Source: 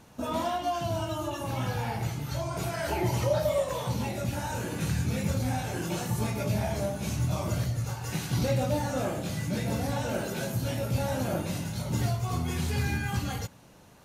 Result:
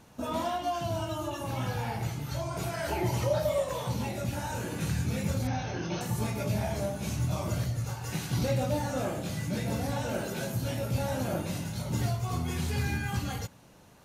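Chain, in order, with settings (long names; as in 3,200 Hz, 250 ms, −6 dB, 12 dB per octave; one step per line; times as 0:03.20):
0:05.47–0:06.01: linear-phase brick-wall low-pass 6,500 Hz
level −1.5 dB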